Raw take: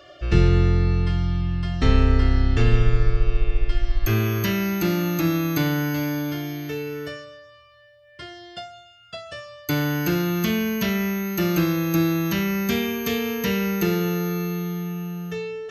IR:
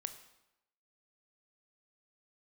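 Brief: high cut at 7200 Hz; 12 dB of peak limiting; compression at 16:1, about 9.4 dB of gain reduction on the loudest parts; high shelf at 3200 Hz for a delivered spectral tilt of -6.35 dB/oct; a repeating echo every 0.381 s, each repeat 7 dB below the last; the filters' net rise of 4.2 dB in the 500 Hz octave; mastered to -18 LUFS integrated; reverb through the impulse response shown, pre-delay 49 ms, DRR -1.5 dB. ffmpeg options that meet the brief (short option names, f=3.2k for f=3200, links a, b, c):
-filter_complex "[0:a]lowpass=7.2k,equalizer=f=500:t=o:g=6,highshelf=f=3.2k:g=-8,acompressor=threshold=-20dB:ratio=16,alimiter=limit=-23.5dB:level=0:latency=1,aecho=1:1:381|762|1143|1524|1905:0.447|0.201|0.0905|0.0407|0.0183,asplit=2[a][b];[1:a]atrim=start_sample=2205,adelay=49[c];[b][c]afir=irnorm=-1:irlink=0,volume=3.5dB[d];[a][d]amix=inputs=2:normalize=0,volume=11dB"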